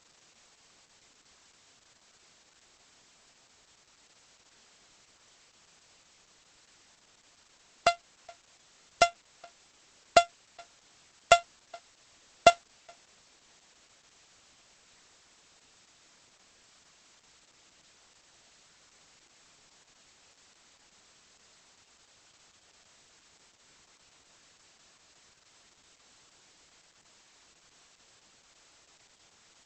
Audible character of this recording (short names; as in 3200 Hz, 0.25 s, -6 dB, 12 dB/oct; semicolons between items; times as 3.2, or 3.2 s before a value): a buzz of ramps at a fixed pitch in blocks of 64 samples; tremolo saw up 2.8 Hz, depth 55%; a quantiser's noise floor 10-bit, dither triangular; Opus